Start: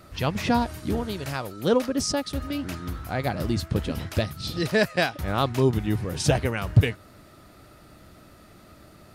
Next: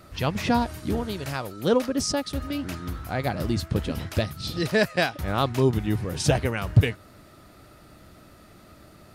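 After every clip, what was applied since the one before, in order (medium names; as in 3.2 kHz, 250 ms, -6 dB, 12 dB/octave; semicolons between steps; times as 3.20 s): no audible change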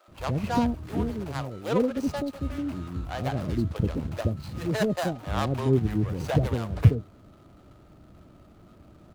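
median filter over 25 samples; bands offset in time highs, lows 80 ms, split 530 Hz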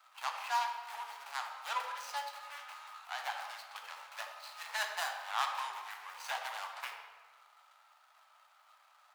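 elliptic high-pass 840 Hz, stop band 60 dB; reverberation RT60 1.5 s, pre-delay 7 ms, DRR 3 dB; trim -1.5 dB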